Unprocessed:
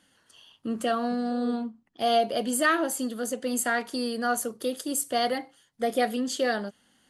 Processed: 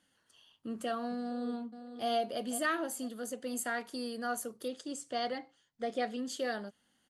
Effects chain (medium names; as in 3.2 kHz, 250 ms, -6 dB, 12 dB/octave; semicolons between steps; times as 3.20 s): 1.22–2.08 s: echo throw 500 ms, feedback 35%, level -10.5 dB; 4.68–6.19 s: low-pass 7.4 kHz 24 dB/octave; trim -9 dB